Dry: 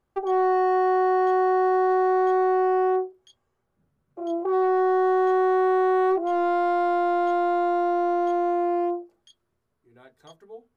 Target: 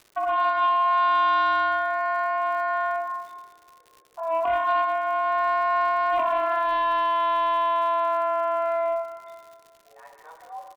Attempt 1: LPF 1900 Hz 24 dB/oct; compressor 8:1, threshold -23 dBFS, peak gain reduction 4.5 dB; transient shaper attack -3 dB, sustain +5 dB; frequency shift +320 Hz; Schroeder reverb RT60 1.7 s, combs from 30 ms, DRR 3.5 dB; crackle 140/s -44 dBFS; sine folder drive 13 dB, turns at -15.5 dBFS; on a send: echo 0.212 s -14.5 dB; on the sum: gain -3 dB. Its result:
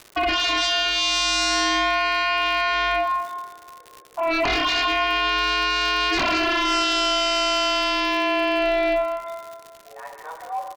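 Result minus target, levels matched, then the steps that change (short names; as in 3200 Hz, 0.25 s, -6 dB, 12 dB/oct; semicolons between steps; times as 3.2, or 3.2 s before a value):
sine folder: distortion +27 dB
change: sine folder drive 3 dB, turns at -15.5 dBFS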